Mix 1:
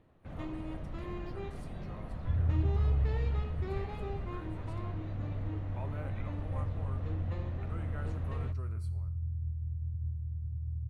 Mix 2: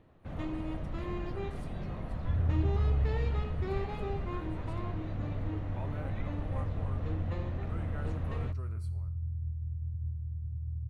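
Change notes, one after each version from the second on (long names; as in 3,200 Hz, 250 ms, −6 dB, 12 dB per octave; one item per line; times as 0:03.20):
first sound +3.5 dB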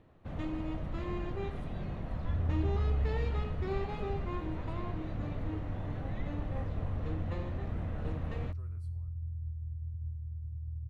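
speech −10.5 dB
second sound: add parametric band 180 Hz −8.5 dB 1.6 octaves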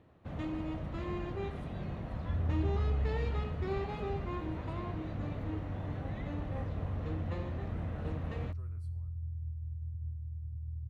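master: add high-pass filter 51 Hz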